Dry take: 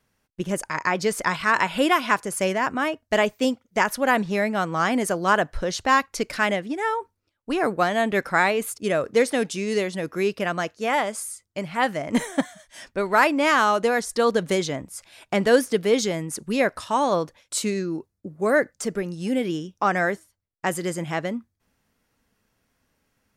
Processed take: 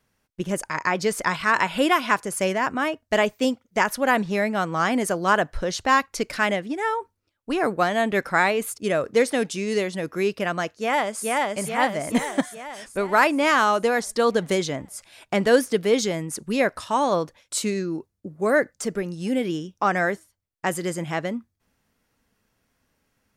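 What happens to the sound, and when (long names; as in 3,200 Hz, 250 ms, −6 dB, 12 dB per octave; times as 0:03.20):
0:10.73–0:11.25: delay throw 430 ms, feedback 60%, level −1 dB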